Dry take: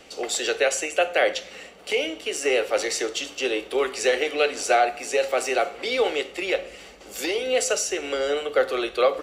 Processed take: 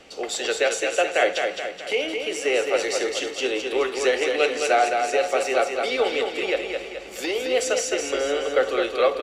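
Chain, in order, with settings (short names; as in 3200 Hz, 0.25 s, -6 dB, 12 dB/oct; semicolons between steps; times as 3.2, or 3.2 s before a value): high shelf 8500 Hz -8.5 dB; on a send: feedback echo 0.213 s, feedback 50%, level -5 dB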